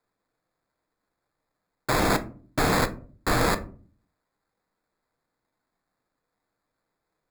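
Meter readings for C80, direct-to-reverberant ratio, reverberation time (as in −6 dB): 22.5 dB, 8.0 dB, 0.45 s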